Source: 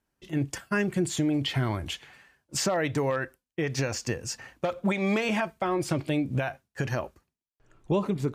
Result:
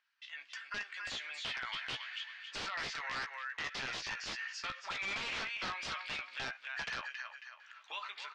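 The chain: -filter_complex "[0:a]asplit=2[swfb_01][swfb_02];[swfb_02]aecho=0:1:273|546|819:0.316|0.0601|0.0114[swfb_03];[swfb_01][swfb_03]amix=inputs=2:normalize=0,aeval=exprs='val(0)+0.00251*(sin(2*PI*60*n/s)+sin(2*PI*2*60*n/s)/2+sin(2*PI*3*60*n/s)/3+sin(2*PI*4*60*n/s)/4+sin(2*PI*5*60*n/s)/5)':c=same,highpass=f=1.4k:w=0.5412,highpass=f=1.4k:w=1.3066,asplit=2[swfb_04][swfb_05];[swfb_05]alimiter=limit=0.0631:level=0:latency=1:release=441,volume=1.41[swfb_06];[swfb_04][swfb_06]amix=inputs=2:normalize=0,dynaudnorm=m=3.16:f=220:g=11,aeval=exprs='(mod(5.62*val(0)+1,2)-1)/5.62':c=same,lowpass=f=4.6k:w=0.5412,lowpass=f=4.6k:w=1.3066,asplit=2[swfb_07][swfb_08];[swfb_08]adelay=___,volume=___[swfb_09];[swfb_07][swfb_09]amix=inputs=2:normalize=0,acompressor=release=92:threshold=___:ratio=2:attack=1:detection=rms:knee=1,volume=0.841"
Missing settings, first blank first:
15, 0.422, 0.00562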